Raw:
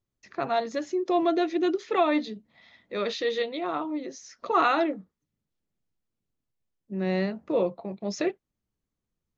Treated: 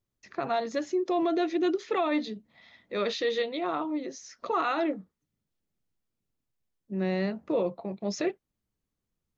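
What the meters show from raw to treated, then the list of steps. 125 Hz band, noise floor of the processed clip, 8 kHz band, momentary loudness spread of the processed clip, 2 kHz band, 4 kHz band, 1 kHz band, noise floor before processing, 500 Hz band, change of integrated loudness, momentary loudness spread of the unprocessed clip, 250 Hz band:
−1.0 dB, −85 dBFS, can't be measured, 10 LU, −3.0 dB, −1.5 dB, −4.0 dB, below −85 dBFS, −2.0 dB, −2.5 dB, 13 LU, −1.5 dB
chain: brickwall limiter −19 dBFS, peak gain reduction 7.5 dB

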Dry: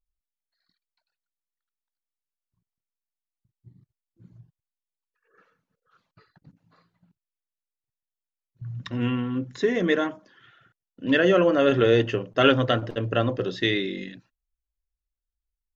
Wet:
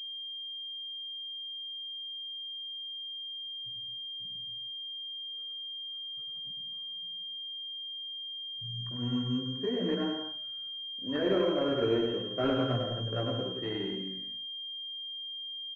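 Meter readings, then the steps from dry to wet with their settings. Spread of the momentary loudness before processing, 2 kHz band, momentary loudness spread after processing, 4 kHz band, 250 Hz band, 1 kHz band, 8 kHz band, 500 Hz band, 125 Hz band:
16 LU, −16.0 dB, 9 LU, +3.5 dB, −7.0 dB, −10.5 dB, can't be measured, −9.0 dB, −7.5 dB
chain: low-pass that shuts in the quiet parts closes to 1,100 Hz, open at −18.5 dBFS
multi-voice chorus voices 2, 0.31 Hz, delay 18 ms, depth 2.5 ms
on a send: bouncing-ball delay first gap 100 ms, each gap 0.7×, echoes 5
on the sum: switching amplifier with a slow clock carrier 3,200 Hz
level −7.5 dB

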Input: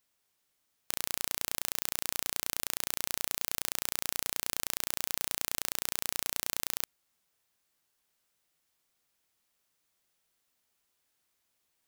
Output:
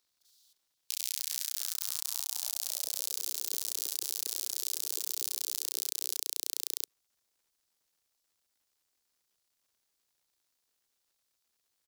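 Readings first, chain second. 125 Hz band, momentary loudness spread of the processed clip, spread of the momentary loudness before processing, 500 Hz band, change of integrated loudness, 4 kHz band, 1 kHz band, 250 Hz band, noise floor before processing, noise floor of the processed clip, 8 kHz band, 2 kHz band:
below −30 dB, 1 LU, 1 LU, −10.0 dB, 0.0 dB, +0.5 dB, −13.0 dB, below −15 dB, −78 dBFS, −80 dBFS, +1.0 dB, −12.0 dB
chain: high shelf with overshoot 2,800 Hz +13.5 dB, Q 1.5
delay with pitch and tempo change per echo 102 ms, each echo +2 semitones, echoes 3
high-pass filter sweep 3,800 Hz → 410 Hz, 0:00.39–0:03.29
output level in coarse steps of 15 dB
surface crackle 280 per second −61 dBFS
multiband delay without the direct sound highs, lows 40 ms, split 160 Hz
level −6 dB

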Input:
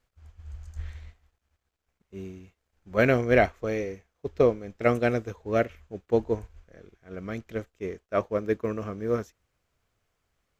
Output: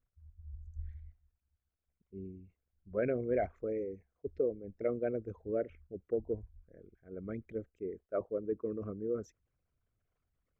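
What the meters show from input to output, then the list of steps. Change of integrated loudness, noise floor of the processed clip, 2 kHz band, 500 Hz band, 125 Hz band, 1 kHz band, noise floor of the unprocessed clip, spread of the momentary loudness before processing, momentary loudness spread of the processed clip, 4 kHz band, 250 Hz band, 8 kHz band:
−10.5 dB, below −85 dBFS, −20.0 dB, −9.0 dB, −13.0 dB, −15.5 dB, −80 dBFS, 20 LU, 16 LU, below −30 dB, −10.0 dB, can't be measured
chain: spectral envelope exaggerated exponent 2
notch filter 860 Hz, Q 12
downward compressor 2 to 1, threshold −26 dBFS, peak gain reduction 6 dB
level −6 dB

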